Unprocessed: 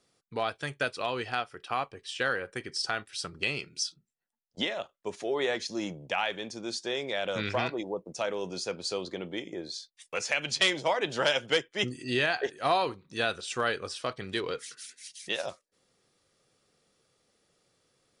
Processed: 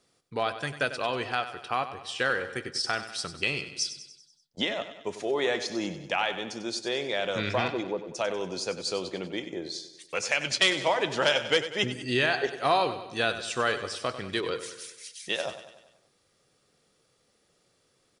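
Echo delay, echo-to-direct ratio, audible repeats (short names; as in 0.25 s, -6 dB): 96 ms, -10.5 dB, 5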